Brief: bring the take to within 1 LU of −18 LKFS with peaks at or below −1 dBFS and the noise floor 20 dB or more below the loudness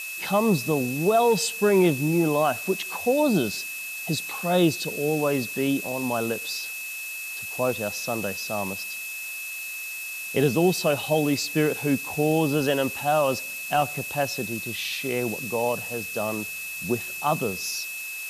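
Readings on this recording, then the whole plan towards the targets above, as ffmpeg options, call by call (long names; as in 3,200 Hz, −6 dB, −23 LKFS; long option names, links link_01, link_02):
interfering tone 2,600 Hz; level of the tone −33 dBFS; background noise floor −35 dBFS; target noise floor −45 dBFS; integrated loudness −25.0 LKFS; sample peak −8.5 dBFS; target loudness −18.0 LKFS
→ -af "bandreject=frequency=2600:width=30"
-af "afftdn=noise_reduction=10:noise_floor=-35"
-af "volume=7dB"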